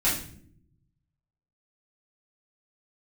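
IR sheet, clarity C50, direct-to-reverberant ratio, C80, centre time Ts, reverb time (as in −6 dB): 5.0 dB, −10.0 dB, 10.0 dB, 37 ms, non-exponential decay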